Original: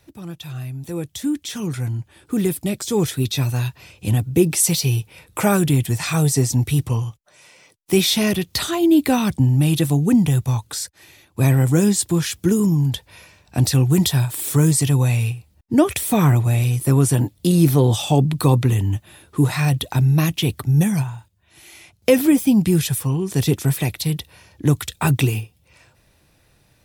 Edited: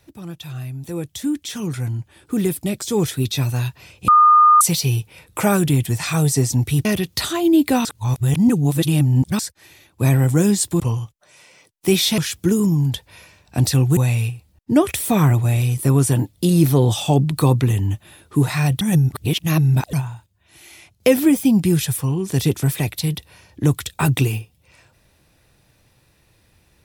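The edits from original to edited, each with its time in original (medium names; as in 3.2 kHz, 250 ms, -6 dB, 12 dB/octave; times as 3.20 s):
4.08–4.61 s: bleep 1.22 kHz -7.5 dBFS
6.85–8.23 s: move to 12.18 s
9.23–10.77 s: reverse
13.97–14.99 s: delete
19.83–20.95 s: reverse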